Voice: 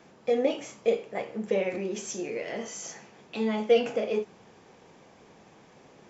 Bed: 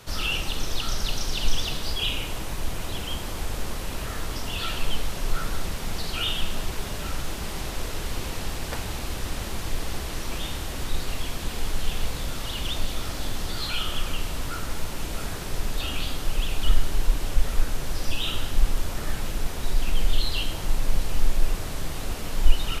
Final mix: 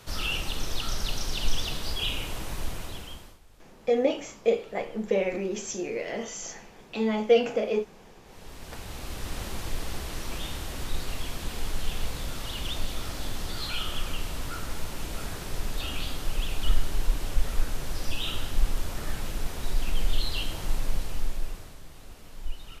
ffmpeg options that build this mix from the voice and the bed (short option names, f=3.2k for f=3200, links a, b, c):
-filter_complex "[0:a]adelay=3600,volume=1.5dB[a];[1:a]volume=20dB,afade=t=out:st=2.62:d=0.77:silence=0.0668344,afade=t=in:st=8.24:d=1.15:silence=0.0707946,afade=t=out:st=20.74:d=1.05:silence=0.223872[b];[a][b]amix=inputs=2:normalize=0"